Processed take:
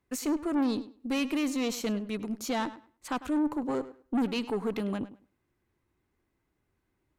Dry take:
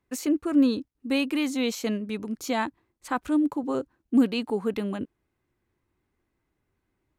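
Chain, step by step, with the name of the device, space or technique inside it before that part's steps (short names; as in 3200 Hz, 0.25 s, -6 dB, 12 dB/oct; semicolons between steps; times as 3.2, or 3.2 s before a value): rockabilly slapback (tube stage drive 24 dB, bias 0.3; tape echo 0.102 s, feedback 20%, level -14 dB, low-pass 4800 Hz)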